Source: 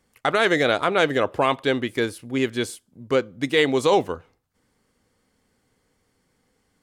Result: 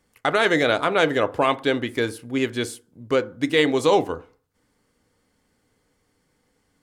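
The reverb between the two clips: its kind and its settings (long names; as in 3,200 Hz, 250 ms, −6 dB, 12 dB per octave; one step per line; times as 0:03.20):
feedback delay network reverb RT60 0.42 s, low-frequency decay 1×, high-frequency decay 0.35×, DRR 12 dB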